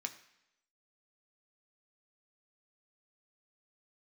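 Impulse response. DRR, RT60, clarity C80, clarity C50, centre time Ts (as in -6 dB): 5.0 dB, 0.85 s, 15.5 dB, 13.0 dB, 8 ms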